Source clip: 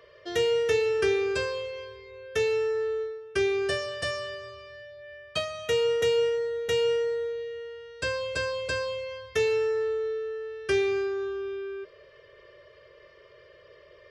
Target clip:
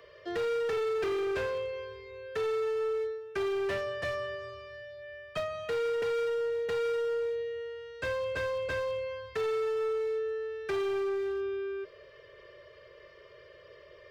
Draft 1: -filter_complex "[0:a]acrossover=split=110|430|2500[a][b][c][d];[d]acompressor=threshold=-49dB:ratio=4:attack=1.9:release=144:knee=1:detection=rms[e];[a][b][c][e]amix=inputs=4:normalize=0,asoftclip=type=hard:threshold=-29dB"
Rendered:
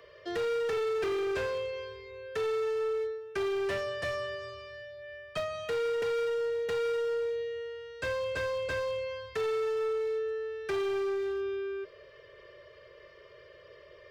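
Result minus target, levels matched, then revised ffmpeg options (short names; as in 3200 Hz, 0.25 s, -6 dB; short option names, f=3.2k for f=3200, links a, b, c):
compressor: peak gain reduction -7 dB
-filter_complex "[0:a]acrossover=split=110|430|2500[a][b][c][d];[d]acompressor=threshold=-58dB:ratio=4:attack=1.9:release=144:knee=1:detection=rms[e];[a][b][c][e]amix=inputs=4:normalize=0,asoftclip=type=hard:threshold=-29dB"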